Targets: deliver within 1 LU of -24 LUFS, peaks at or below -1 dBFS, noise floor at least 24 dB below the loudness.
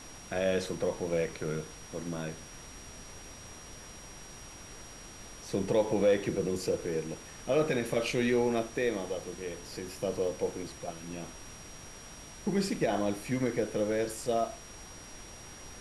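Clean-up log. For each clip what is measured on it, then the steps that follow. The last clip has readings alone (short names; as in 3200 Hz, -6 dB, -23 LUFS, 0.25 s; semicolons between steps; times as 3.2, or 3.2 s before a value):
steady tone 5700 Hz; tone level -51 dBFS; noise floor -48 dBFS; noise floor target -56 dBFS; loudness -32.0 LUFS; peak -16.5 dBFS; loudness target -24.0 LUFS
-> notch 5700 Hz, Q 30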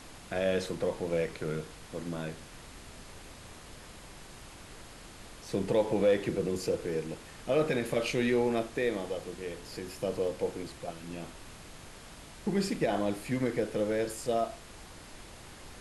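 steady tone none; noise floor -50 dBFS; noise floor target -57 dBFS
-> noise print and reduce 7 dB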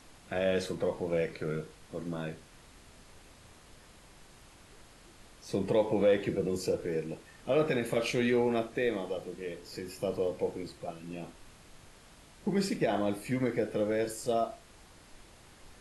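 noise floor -57 dBFS; loudness -32.5 LUFS; peak -16.5 dBFS; loudness target -24.0 LUFS
-> gain +8.5 dB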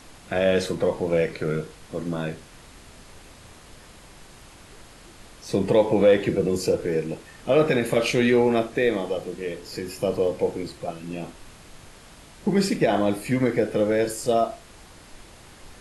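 loudness -24.0 LUFS; peak -8.0 dBFS; noise floor -48 dBFS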